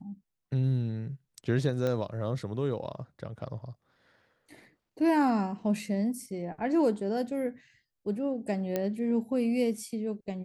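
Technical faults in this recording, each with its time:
1.87 s: pop -19 dBFS
8.76 s: pop -16 dBFS

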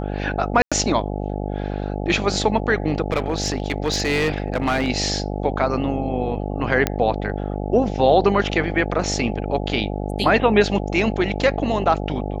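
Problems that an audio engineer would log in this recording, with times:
buzz 50 Hz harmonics 17 -26 dBFS
0.62–0.72 s: dropout 96 ms
3.12–4.88 s: clipped -15.5 dBFS
6.87 s: pop -4 dBFS

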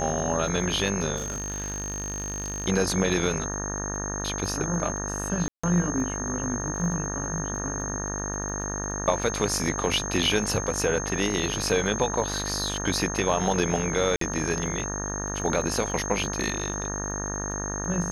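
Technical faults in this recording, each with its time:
buzz 50 Hz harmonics 37 -33 dBFS
crackle 18 per s -35 dBFS
whine 6.4 kHz -32 dBFS
1.16–2.66 s: clipped -27 dBFS
5.48–5.63 s: dropout 155 ms
14.16–14.21 s: dropout 53 ms

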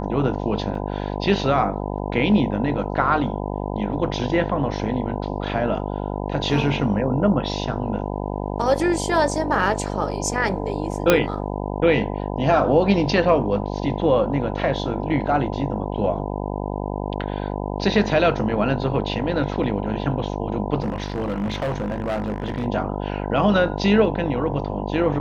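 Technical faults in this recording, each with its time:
buzz 50 Hz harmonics 20 -27 dBFS
0.75 s: dropout 2.6 ms
11.10 s: pop -1 dBFS
20.82–22.66 s: clipped -20.5 dBFS

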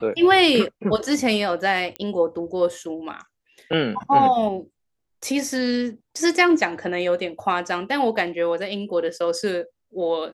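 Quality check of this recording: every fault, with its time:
1.96 s: pop -15 dBFS

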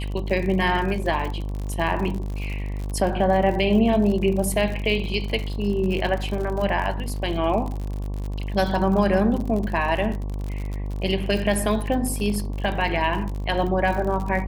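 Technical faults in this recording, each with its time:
buzz 50 Hz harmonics 23 -28 dBFS
crackle 62 per s -29 dBFS

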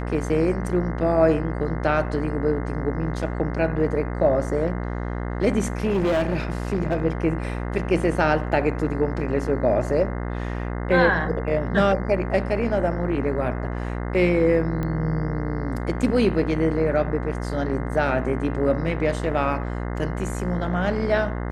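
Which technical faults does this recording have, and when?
buzz 60 Hz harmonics 35 -28 dBFS
5.84–7.05 s: clipped -17.5 dBFS
14.83 s: pop -17 dBFS

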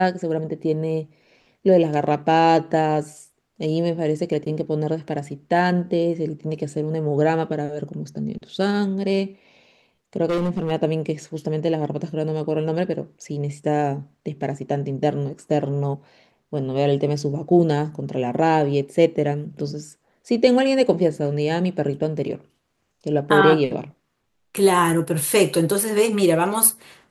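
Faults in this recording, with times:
10.29–10.72 s: clipped -18 dBFS

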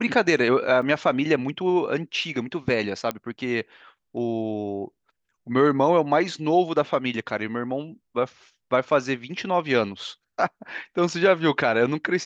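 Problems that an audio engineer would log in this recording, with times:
0.82 s: dropout 4.9 ms
3.11 s: pop -13 dBFS

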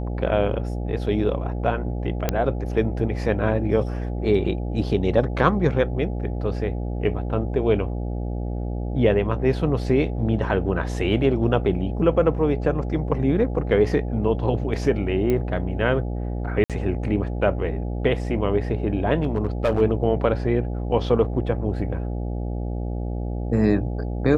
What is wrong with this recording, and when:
buzz 60 Hz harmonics 14 -27 dBFS
2.29 s: pop -7 dBFS
15.30 s: pop -12 dBFS
16.64–16.70 s: dropout 57 ms
19.23–19.82 s: clipped -15 dBFS

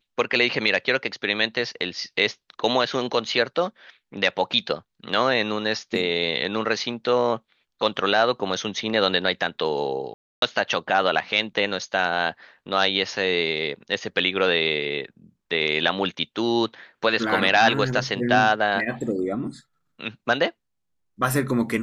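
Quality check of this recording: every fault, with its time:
10.14–10.42 s: dropout 282 ms

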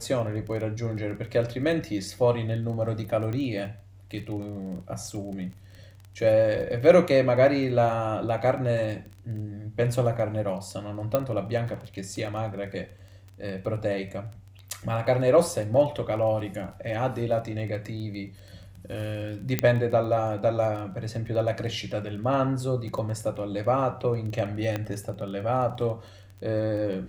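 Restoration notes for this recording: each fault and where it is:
crackle 18 per s -35 dBFS
3.33 s: pop -21 dBFS
11.15 s: pop -11 dBFS
19.59 s: pop -7 dBFS
24.76 s: pop -15 dBFS

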